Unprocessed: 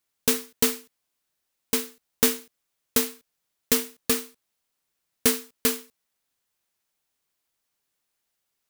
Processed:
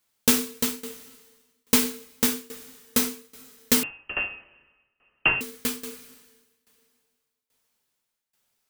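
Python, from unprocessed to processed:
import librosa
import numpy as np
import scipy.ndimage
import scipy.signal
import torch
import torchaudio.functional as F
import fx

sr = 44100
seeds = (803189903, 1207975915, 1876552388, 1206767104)

y = fx.rev_double_slope(x, sr, seeds[0], early_s=0.45, late_s=2.4, knee_db=-22, drr_db=2.5)
y = fx.tremolo_shape(y, sr, shape='saw_down', hz=1.2, depth_pct=90)
y = fx.freq_invert(y, sr, carrier_hz=3000, at=(3.83, 5.41))
y = y * librosa.db_to_amplitude(5.0)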